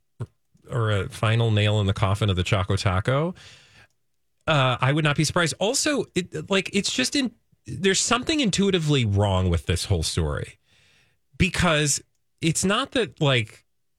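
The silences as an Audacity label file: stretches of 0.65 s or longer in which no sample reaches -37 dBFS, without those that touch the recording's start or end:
3.500000	4.470000	silence
10.510000	11.400000	silence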